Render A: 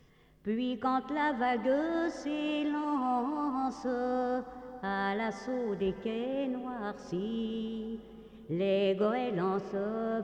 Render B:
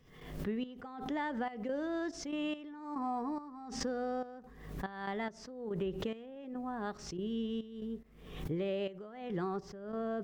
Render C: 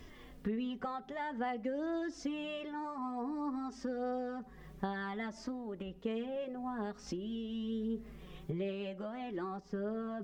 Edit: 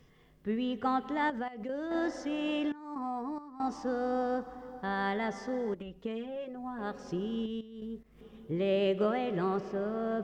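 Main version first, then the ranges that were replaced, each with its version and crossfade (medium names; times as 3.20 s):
A
1.30–1.91 s: from B
2.72–3.60 s: from B
5.74–6.79 s: from C
7.46–8.21 s: from B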